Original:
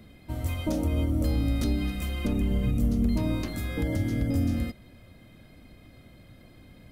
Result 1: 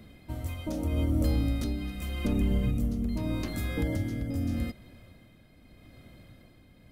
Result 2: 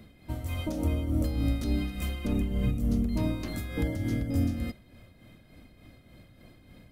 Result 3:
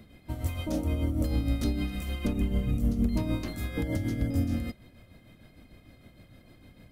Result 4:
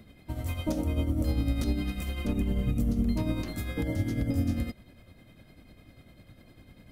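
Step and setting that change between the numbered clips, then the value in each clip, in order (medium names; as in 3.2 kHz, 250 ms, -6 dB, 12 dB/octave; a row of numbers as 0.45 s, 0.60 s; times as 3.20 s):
tremolo, rate: 0.82 Hz, 3.4 Hz, 6.6 Hz, 10 Hz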